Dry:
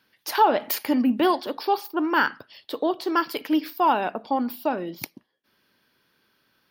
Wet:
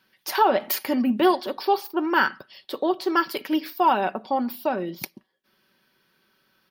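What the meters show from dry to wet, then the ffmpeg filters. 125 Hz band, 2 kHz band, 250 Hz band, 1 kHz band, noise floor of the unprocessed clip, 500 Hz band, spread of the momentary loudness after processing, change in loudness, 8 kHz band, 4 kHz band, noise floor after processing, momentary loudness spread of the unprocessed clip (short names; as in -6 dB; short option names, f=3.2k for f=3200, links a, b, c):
+2.5 dB, +1.0 dB, -0.5 dB, 0.0 dB, -71 dBFS, +1.5 dB, 9 LU, +0.5 dB, +0.5 dB, +0.5 dB, -70 dBFS, 10 LU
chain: -af "aecho=1:1:5.3:0.44"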